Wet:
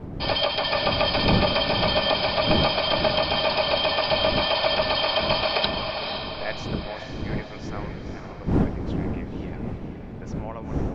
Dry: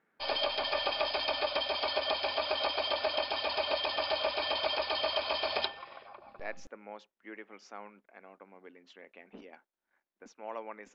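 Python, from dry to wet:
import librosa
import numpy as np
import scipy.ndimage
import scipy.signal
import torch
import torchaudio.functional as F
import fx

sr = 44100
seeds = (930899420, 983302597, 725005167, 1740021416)

y = fx.fade_out_tail(x, sr, length_s=0.71)
y = fx.dmg_wind(y, sr, seeds[0], corner_hz=250.0, level_db=-39.0)
y = fx.echo_diffused(y, sr, ms=496, feedback_pct=51, wet_db=-6.0)
y = F.gain(torch.from_numpy(y), 8.0).numpy()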